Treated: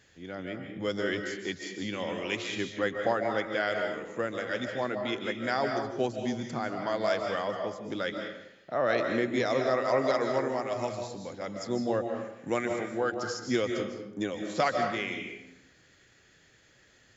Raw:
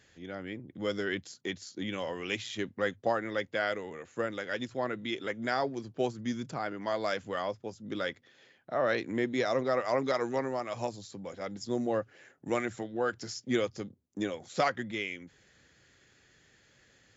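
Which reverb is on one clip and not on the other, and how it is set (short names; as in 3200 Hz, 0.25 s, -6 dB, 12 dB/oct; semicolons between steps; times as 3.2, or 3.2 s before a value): digital reverb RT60 0.83 s, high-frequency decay 0.7×, pre-delay 0.11 s, DRR 3.5 dB; gain +1 dB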